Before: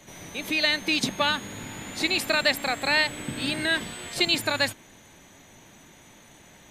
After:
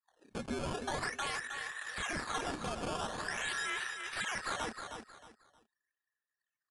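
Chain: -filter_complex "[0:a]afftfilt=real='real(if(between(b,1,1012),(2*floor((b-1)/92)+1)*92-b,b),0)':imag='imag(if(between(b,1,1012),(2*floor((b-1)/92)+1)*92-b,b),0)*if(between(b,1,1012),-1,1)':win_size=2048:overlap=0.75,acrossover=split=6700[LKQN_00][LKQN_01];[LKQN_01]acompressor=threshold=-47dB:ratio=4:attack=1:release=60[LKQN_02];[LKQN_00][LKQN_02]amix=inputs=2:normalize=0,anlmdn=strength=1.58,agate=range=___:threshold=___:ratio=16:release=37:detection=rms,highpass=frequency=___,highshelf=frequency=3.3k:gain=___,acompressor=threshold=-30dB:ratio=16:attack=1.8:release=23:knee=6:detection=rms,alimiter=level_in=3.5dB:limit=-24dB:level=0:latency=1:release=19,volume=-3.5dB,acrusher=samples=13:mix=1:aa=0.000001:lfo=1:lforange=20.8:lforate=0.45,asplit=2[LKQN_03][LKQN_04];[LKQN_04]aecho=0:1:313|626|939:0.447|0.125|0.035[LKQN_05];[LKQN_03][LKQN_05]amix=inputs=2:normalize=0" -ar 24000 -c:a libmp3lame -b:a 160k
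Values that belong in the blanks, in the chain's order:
-10dB, -45dB, 1k, -8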